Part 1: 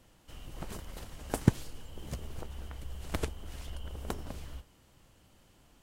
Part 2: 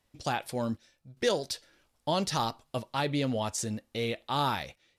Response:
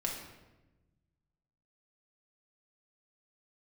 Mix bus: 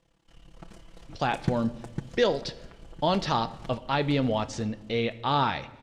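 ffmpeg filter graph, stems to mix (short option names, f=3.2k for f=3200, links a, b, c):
-filter_complex "[0:a]tremolo=f=35:d=0.919,aecho=1:1:6:0.64,volume=-6dB,asplit=3[a][b][c];[b]volume=-12dB[d];[c]volume=-4dB[e];[1:a]lowpass=4k,adelay=950,volume=2.5dB,asplit=2[f][g];[g]volume=-13.5dB[h];[2:a]atrim=start_sample=2205[i];[d][h]amix=inputs=2:normalize=0[j];[j][i]afir=irnorm=-1:irlink=0[k];[e]aecho=0:1:503|1006|1509|2012|2515|3018:1|0.41|0.168|0.0689|0.0283|0.0116[l];[a][f][k][l]amix=inputs=4:normalize=0,lowpass=7k"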